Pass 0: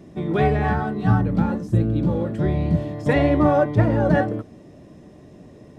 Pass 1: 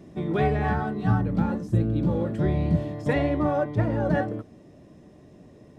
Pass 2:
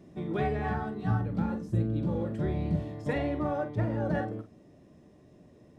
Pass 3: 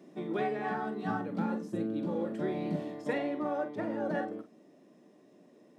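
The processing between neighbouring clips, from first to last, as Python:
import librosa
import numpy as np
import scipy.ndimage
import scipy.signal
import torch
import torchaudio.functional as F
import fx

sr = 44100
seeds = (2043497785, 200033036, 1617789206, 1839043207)

y1 = fx.rider(x, sr, range_db=3, speed_s=0.5)
y1 = y1 * 10.0 ** (-4.5 / 20.0)
y2 = fx.doubler(y1, sr, ms=45.0, db=-10)
y2 = y2 * 10.0 ** (-6.5 / 20.0)
y3 = scipy.signal.sosfilt(scipy.signal.butter(4, 210.0, 'highpass', fs=sr, output='sos'), y2)
y3 = fx.rider(y3, sr, range_db=10, speed_s=0.5)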